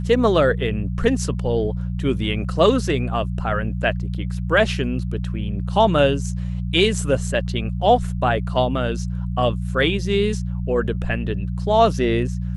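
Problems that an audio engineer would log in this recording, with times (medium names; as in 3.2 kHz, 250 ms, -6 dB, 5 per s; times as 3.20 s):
hum 60 Hz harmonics 3 -25 dBFS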